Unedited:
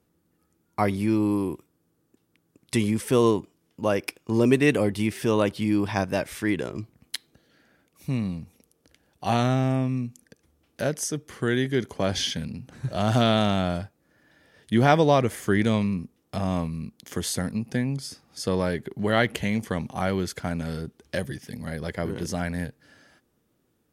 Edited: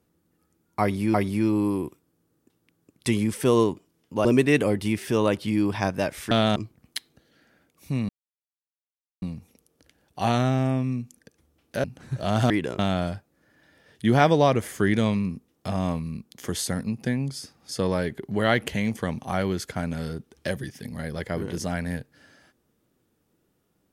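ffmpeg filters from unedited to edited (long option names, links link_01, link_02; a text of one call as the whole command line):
ffmpeg -i in.wav -filter_complex "[0:a]asplit=9[link_01][link_02][link_03][link_04][link_05][link_06][link_07][link_08][link_09];[link_01]atrim=end=1.142[link_10];[link_02]atrim=start=0.808:end=3.922[link_11];[link_03]atrim=start=4.388:end=6.452[link_12];[link_04]atrim=start=13.218:end=13.472[link_13];[link_05]atrim=start=6.738:end=8.27,asetpts=PTS-STARTPTS,afade=type=out:start_time=1.528:duration=0.004:curve=hsin,apad=pad_dur=1.13[link_14];[link_06]atrim=start=8.27:end=10.892,asetpts=PTS-STARTPTS,afade=type=in:duration=0.004:curve=hsin[link_15];[link_07]atrim=start=12.558:end=13.222[link_16];[link_08]atrim=start=6.448:end=6.742[link_17];[link_09]atrim=start=13.468[link_18];[link_10][link_11]acrossfade=duration=0.004:curve1=hsin:curve2=hsin[link_19];[link_19][link_12]acrossfade=duration=0.004:curve1=hsin:curve2=hsin[link_20];[link_20][link_13]acrossfade=duration=0.004:curve1=hsin:curve2=hsin[link_21];[link_14][link_15]concat=n=2:v=0:a=1[link_22];[link_21][link_22]acrossfade=duration=0.004:curve1=hsin:curve2=hsin[link_23];[link_23][link_16]acrossfade=duration=0.004:curve1=hsin:curve2=hsin[link_24];[link_24][link_17]acrossfade=duration=0.004:curve1=hsin:curve2=hsin[link_25];[link_25][link_18]acrossfade=duration=0.004:curve1=hsin:curve2=hsin" out.wav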